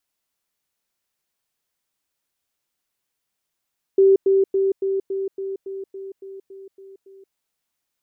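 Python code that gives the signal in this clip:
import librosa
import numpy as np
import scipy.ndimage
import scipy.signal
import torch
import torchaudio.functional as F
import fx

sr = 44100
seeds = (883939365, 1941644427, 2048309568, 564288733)

y = fx.level_ladder(sr, hz=388.0, from_db=-10.0, step_db=-3.0, steps=12, dwell_s=0.18, gap_s=0.1)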